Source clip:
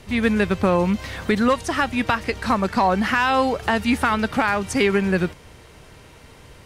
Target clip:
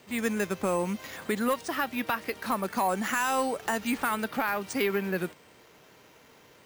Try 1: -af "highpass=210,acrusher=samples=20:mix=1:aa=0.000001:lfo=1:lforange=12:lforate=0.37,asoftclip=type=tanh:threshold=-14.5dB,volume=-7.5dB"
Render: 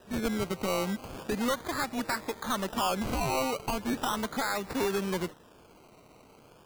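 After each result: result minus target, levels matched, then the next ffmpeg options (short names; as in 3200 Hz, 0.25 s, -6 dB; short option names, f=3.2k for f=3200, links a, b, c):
decimation with a swept rate: distortion +16 dB; soft clip: distortion +11 dB
-af "highpass=210,acrusher=samples=4:mix=1:aa=0.000001:lfo=1:lforange=2.4:lforate=0.37,asoftclip=type=tanh:threshold=-14.5dB,volume=-7.5dB"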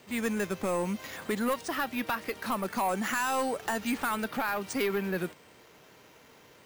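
soft clip: distortion +11 dB
-af "highpass=210,acrusher=samples=4:mix=1:aa=0.000001:lfo=1:lforange=2.4:lforate=0.37,asoftclip=type=tanh:threshold=-6.5dB,volume=-7.5dB"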